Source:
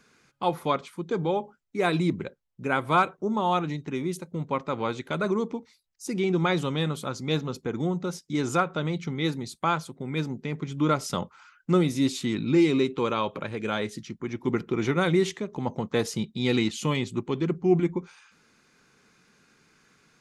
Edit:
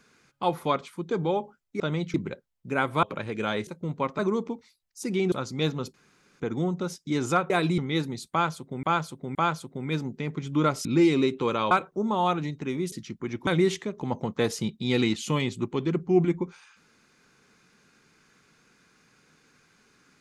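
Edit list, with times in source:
0:01.80–0:02.08: swap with 0:08.73–0:09.07
0:02.97–0:04.18: swap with 0:13.28–0:13.92
0:04.70–0:05.23: remove
0:06.36–0:07.01: remove
0:07.63: splice in room tone 0.46 s
0:09.60–0:10.12: repeat, 3 plays
0:11.10–0:12.42: remove
0:14.47–0:15.02: remove

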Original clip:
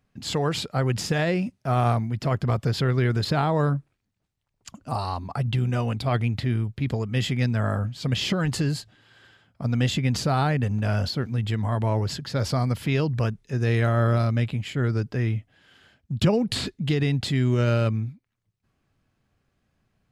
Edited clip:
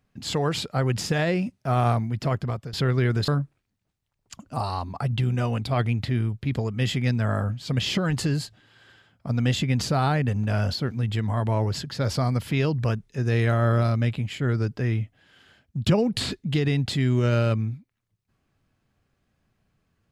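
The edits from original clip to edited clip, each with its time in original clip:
0:02.27–0:02.73: fade out, to −16 dB
0:03.28–0:03.63: remove

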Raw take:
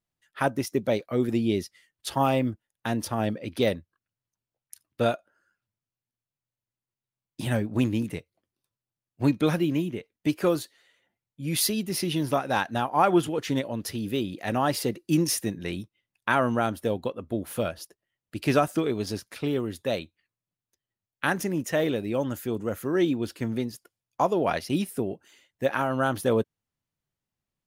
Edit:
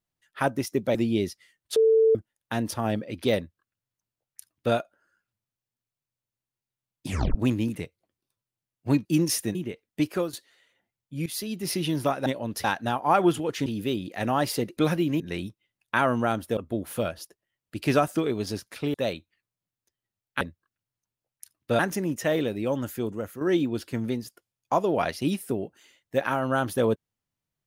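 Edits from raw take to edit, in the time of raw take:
0:00.95–0:01.29: remove
0:02.10–0:02.49: beep over 445 Hz −15.5 dBFS
0:03.71–0:05.09: duplicate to 0:21.27
0:07.41: tape stop 0.28 s
0:09.39–0:09.82: swap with 0:15.04–0:15.54
0:10.35–0:10.60: fade out, to −11.5 dB
0:11.53–0:11.98: fade in, from −15.5 dB
0:13.55–0:13.93: move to 0:12.53
0:16.91–0:17.17: remove
0:19.54–0:19.80: remove
0:22.51–0:22.89: fade out linear, to −8.5 dB

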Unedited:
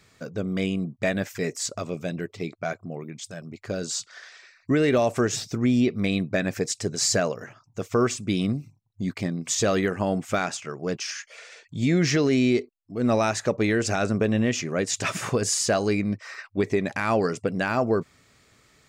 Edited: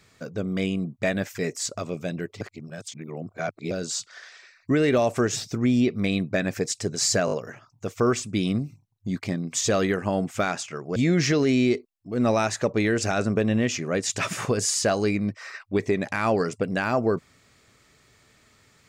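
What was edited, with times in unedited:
0:02.41–0:03.71: reverse
0:07.26: stutter 0.02 s, 4 plays
0:10.90–0:11.80: remove

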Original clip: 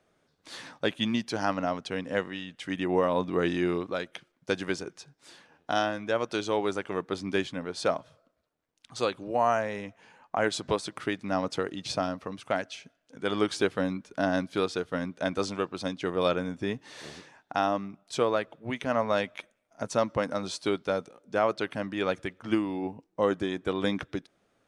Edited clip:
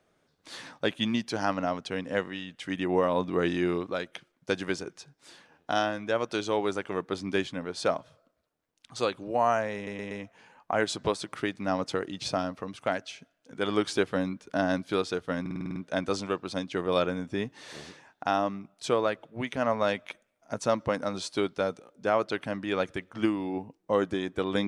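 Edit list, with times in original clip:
0:09.75: stutter 0.12 s, 4 plays
0:15.05: stutter 0.05 s, 8 plays

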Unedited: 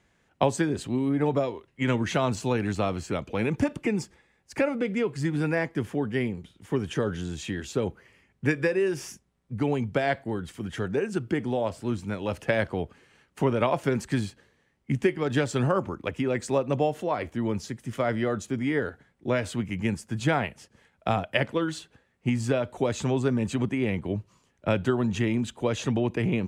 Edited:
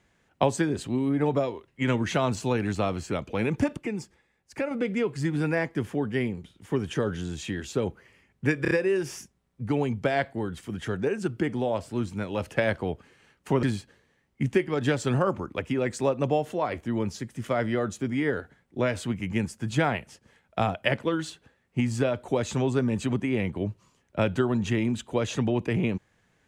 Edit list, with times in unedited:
0:03.77–0:04.71: clip gain −5 dB
0:08.62: stutter 0.03 s, 4 plays
0:13.54–0:14.12: remove

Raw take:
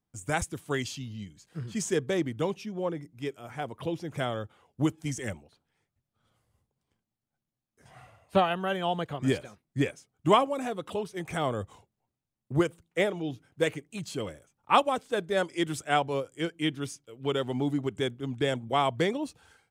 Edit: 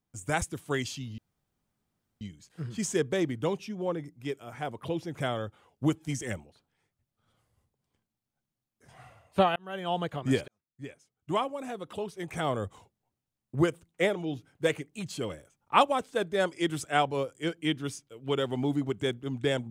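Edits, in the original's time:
0:01.18: splice in room tone 1.03 s
0:08.53–0:08.95: fade in
0:09.45–0:11.56: fade in

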